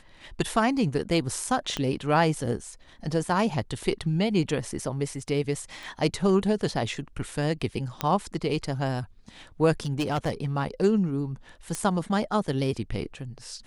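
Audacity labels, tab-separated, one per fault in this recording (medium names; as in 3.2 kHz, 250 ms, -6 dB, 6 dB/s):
1.770000	1.770000	pop -14 dBFS
5.830000	5.830000	pop
8.010000	8.010000	pop -11 dBFS
9.860000	10.460000	clipped -22 dBFS
11.750000	11.750000	pop -16 dBFS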